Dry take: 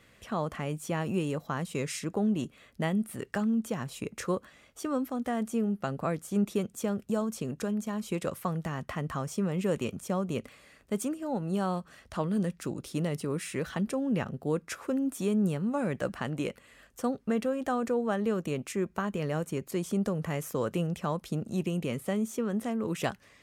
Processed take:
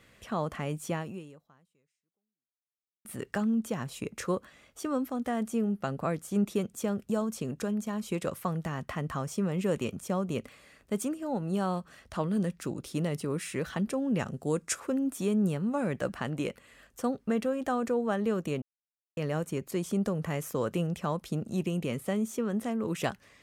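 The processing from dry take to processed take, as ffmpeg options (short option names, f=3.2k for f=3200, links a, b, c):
-filter_complex "[0:a]asettb=1/sr,asplit=3[a][b][c];[a]atrim=end=14.194[d];[b]atrim=start=14.19:end=14.8,asetpts=PTS-STARTPTS,afade=t=in:d=0.004:c=qsin,afade=t=out:st=0.606:d=0.004:c=qsin,equalizer=f=7.8k:t=o:w=0.97:g=12.5[e];[c]atrim=start=14.796[f];[d][e]acrossfade=d=0.004:c1=hsin:c2=qsin[g];[g][f]acrossfade=d=0.004:c1=qsin:c2=hsin,asplit=4[h][i][j][k];[h]atrim=end=3.05,asetpts=PTS-STARTPTS,afade=t=out:st=0.92:d=2.13:c=exp[l];[i]atrim=start=3.05:end=18.62,asetpts=PTS-STARTPTS,afade=t=in:d=0.004:c=hsin,afade=t=out:st=15.566:d=0.004:c=hsin[m];[j]atrim=start=18.62:end=19.17,asetpts=PTS-STARTPTS,volume=0[n];[k]atrim=start=19.17,asetpts=PTS-STARTPTS,afade=t=in:d=0.004:c=hsin[o];[l][m][n][o]concat=n=4:v=0:a=1"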